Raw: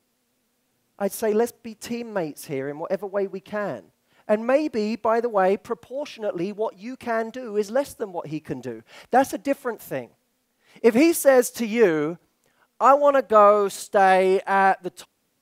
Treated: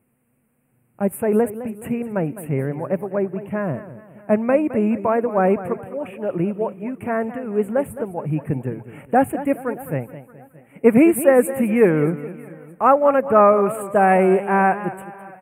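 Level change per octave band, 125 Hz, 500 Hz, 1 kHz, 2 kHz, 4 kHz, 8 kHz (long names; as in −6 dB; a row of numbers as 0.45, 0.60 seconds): +11.5 dB, +2.5 dB, +1.0 dB, +0.5 dB, below −10 dB, −2.0 dB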